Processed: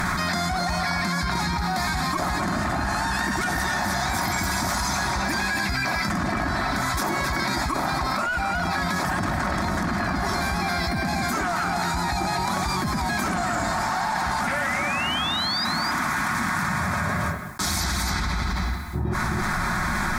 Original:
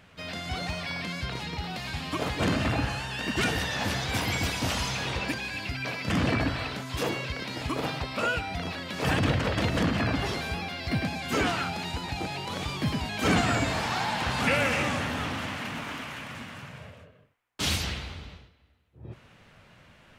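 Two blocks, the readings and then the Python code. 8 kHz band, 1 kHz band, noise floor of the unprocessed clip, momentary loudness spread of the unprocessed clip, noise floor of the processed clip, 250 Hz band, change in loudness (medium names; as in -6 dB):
+8.0 dB, +9.0 dB, -57 dBFS, 11 LU, -26 dBFS, +3.5 dB, +4.5 dB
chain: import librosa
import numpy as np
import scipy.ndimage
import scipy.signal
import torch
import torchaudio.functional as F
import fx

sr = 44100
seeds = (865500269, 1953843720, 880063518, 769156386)

p1 = fx.peak_eq(x, sr, hz=130.0, db=-10.0, octaves=0.84)
p2 = p1 + 0.38 * np.pad(p1, (int(5.5 * sr / 1000.0), 0))[:len(p1)]
p3 = fx.dynamic_eq(p2, sr, hz=610.0, q=2.2, threshold_db=-45.0, ratio=4.0, max_db=7)
p4 = fx.fixed_phaser(p3, sr, hz=1200.0, stages=4)
p5 = fx.tube_stage(p4, sr, drive_db=20.0, bias=0.4)
p6 = fx.spec_paint(p5, sr, seeds[0], shape='rise', start_s=14.54, length_s=1.11, low_hz=1700.0, high_hz=5000.0, level_db=-36.0)
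p7 = p6 + fx.echo_single(p6, sr, ms=266, db=-9.5, dry=0)
p8 = fx.env_flatten(p7, sr, amount_pct=100)
y = p8 * 10.0 ** (1.5 / 20.0)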